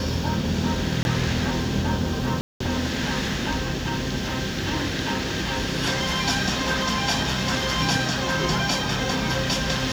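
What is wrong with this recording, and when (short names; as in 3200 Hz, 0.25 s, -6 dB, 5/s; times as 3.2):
1.03–1.05 gap 21 ms
2.41–2.6 gap 0.194 s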